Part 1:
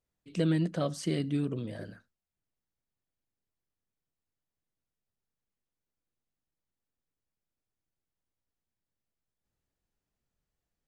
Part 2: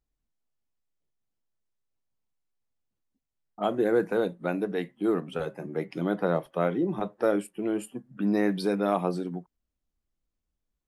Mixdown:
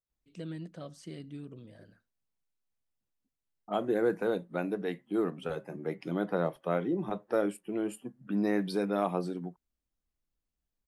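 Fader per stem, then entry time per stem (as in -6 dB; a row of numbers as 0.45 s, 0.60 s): -13.0 dB, -4.0 dB; 0.00 s, 0.10 s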